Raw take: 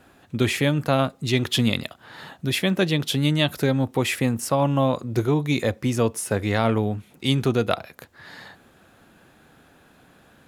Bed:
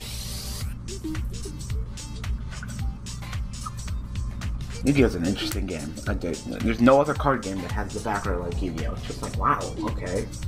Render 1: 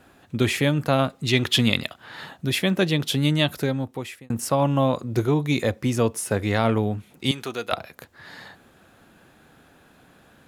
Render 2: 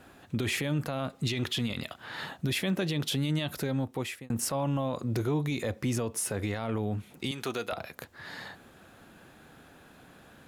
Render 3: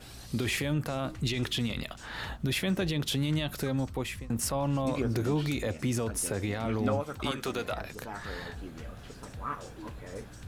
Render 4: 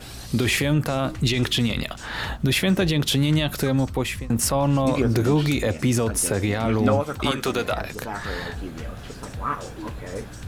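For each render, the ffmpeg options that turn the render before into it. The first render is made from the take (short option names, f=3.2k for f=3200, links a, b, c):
-filter_complex "[0:a]asettb=1/sr,asplit=3[a][b][c];[a]atrim=end=1.084[d];[b]atrim=start=1.08:end=2.26,asetpts=PTS-STARTPTS,afade=t=in:d=0.004:c=qsin,afade=t=out:st=1.176:d=0.004:c=qsin,equalizer=f=2.5k:w=0.56:g=4[e];[c]atrim=start=2.256[f];[d][e]acrossfade=d=0.004:c1=hsin:c2=qsin[g];[g][f]acrossfade=d=0.004:c1=qsin:c2=hsin,asettb=1/sr,asplit=3[h][i][j];[h]atrim=end=7.314[k];[i]atrim=start=7.31:end=7.72,asetpts=PTS-STARTPTS,afade=t=in:d=0.004:c=qsin,afade=t=out:st=0.406:d=0.004:c=qsin,highpass=f=1.1k:p=1[l];[j]atrim=start=7.716[m];[k][l]acrossfade=d=0.004:c1=hsin:c2=qsin[n];[n][m]acrossfade=d=0.004:c1=qsin:c2=hsin,asplit=2[o][p];[o]atrim=end=4.3,asetpts=PTS-STARTPTS,afade=t=out:st=3.42:d=0.88[q];[p]atrim=start=4.3,asetpts=PTS-STARTPTS,afade=t=in:d=0.004:c=hsin[r];[q][r]concat=n=2:v=0:a=1"
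-af "acompressor=threshold=-23dB:ratio=3,alimiter=limit=-21dB:level=0:latency=1:release=22"
-filter_complex "[1:a]volume=-14dB[a];[0:a][a]amix=inputs=2:normalize=0"
-af "volume=9dB"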